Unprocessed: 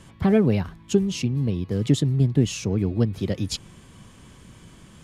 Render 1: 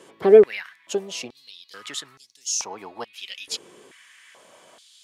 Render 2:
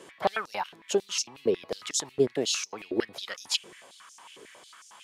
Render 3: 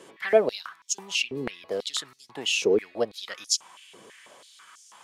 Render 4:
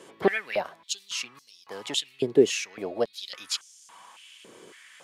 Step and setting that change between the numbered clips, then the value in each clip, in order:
step-sequenced high-pass, rate: 2.3 Hz, 11 Hz, 6.1 Hz, 3.6 Hz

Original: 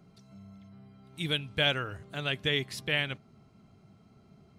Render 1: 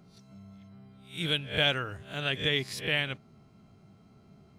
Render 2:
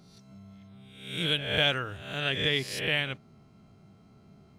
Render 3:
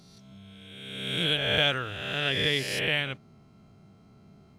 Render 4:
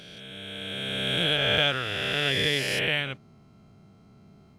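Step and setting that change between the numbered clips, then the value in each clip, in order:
reverse spectral sustain, rising 60 dB in: 0.33 s, 0.71 s, 1.5 s, 3.19 s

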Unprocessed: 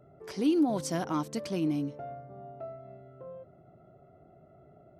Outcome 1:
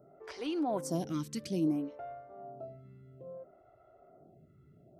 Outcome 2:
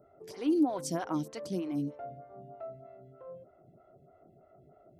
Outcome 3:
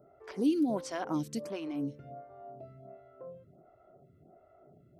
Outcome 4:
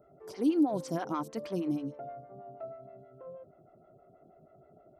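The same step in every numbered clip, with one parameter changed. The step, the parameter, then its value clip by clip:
lamp-driven phase shifter, rate: 0.6 Hz, 3.2 Hz, 1.4 Hz, 6.3 Hz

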